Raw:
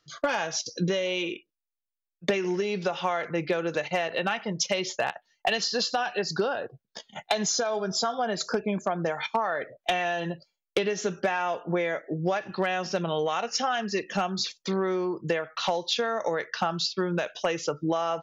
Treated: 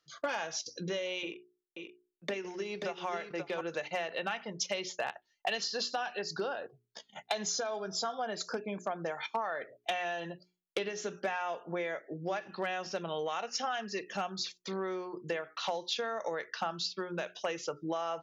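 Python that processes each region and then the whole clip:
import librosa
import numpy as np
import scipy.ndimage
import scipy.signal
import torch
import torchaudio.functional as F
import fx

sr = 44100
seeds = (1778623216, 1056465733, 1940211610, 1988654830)

y = fx.chain(x, sr, fx.echo_single(ms=533, db=-6.5),
    fx.transient(attack_db=-3, sustain_db=-10),
    fx.band_squash(depth_pct=40), at=(1.23, 3.61))
y = fx.low_shelf(y, sr, hz=160.0, db=-10.0)
y = fx.hum_notches(y, sr, base_hz=60, count=7)
y = y * 10.0 ** (-7.0 / 20.0)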